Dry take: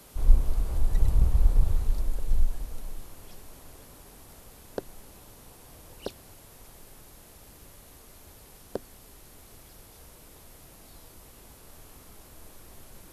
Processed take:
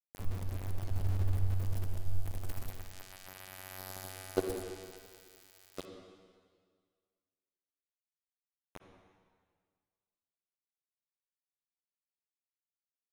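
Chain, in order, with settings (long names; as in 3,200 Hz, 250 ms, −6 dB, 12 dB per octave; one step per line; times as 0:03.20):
source passing by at 0:03.93, 36 m/s, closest 13 metres
parametric band 1,900 Hz −7 dB 0.33 octaves
comb filter 2.7 ms, depth 31%
phases set to zero 94.1 Hz
centre clipping without the shift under −44.5 dBFS
on a send: convolution reverb RT60 1.8 s, pre-delay 47 ms, DRR 4 dB
on the sum: level +8 dB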